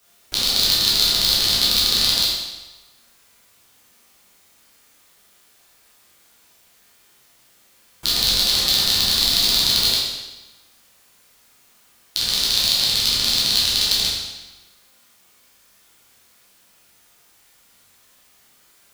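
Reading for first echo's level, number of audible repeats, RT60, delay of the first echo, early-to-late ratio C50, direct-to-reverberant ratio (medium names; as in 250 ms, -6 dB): no echo, no echo, 1.1 s, no echo, 0.0 dB, -7.5 dB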